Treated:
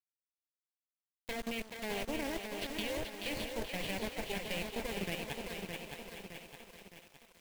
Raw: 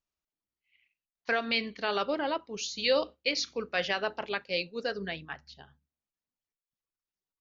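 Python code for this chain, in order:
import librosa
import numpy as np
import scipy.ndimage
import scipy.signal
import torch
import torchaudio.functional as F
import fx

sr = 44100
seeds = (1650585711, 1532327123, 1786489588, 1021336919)

p1 = fx.highpass(x, sr, hz=72.0, slope=6)
p2 = fx.cheby_harmonics(p1, sr, harmonics=(3, 6), levels_db=(-17, -12), full_scale_db=-15.5)
p3 = fx.level_steps(p2, sr, step_db=19)
p4 = fx.env_lowpass_down(p3, sr, base_hz=2600.0, full_db=-36.0)
p5 = fx.fixed_phaser(p4, sr, hz=3000.0, stages=4)
p6 = fx.quant_companded(p5, sr, bits=4)
p7 = p6 + fx.echo_thinned(p6, sr, ms=430, feedback_pct=53, hz=290.0, wet_db=-6.0, dry=0)
p8 = fx.echo_crushed(p7, sr, ms=614, feedback_pct=55, bits=10, wet_db=-5)
y = p8 * librosa.db_to_amplitude(3.0)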